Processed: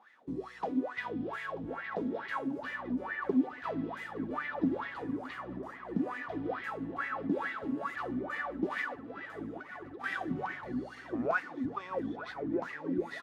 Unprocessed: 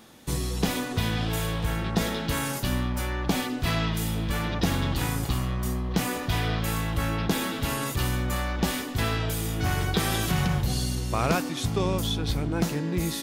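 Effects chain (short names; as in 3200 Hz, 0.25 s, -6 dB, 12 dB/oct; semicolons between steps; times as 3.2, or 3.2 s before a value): high shelf 11000 Hz -6.5 dB; 8.67–10.04 negative-ratio compressor -31 dBFS, ratio -0.5; wah 2.3 Hz 250–2000 Hz, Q 12; feedback echo 0.936 s, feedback 57%, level -17 dB; gain +8 dB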